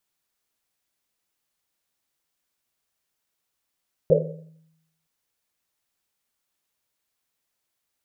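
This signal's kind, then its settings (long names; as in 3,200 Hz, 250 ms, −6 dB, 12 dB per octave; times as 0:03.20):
drum after Risset length 0.97 s, pitch 160 Hz, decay 0.93 s, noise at 510 Hz, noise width 160 Hz, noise 65%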